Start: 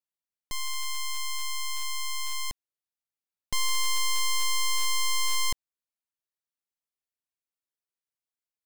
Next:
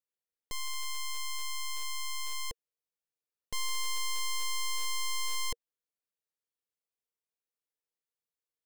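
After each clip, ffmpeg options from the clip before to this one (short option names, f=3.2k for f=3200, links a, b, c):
-af "equalizer=f=470:t=o:w=0.34:g=11.5,alimiter=level_in=1.5dB:limit=-24dB:level=0:latency=1,volume=-1.5dB,volume=-4.5dB"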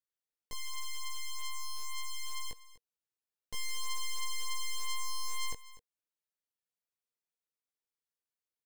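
-af "flanger=delay=16.5:depth=3.7:speed=0.29,aecho=1:1:246:0.133,volume=-1dB"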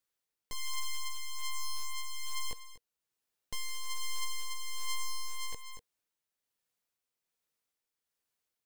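-af "asoftclip=type=tanh:threshold=-37.5dB,tremolo=f=1.2:d=0.37,volume=8dB"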